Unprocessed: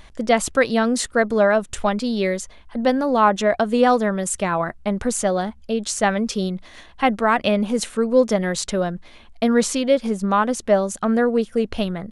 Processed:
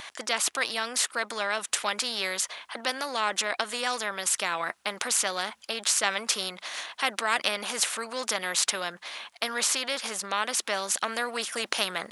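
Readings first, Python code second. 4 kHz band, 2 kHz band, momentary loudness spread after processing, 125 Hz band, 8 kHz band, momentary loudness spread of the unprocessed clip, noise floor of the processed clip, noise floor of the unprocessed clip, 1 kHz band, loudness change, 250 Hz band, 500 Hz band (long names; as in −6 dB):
+3.5 dB, −3.0 dB, 7 LU, −23.0 dB, +1.5 dB, 7 LU, −61 dBFS, −46 dBFS, −9.5 dB, −7.5 dB, −22.5 dB, −16.0 dB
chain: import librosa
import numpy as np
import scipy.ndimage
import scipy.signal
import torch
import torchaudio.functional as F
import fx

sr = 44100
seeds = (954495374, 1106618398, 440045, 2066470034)

y = scipy.signal.sosfilt(scipy.signal.butter(2, 1000.0, 'highpass', fs=sr, output='sos'), x)
y = fx.rider(y, sr, range_db=10, speed_s=2.0)
y = fx.spectral_comp(y, sr, ratio=2.0)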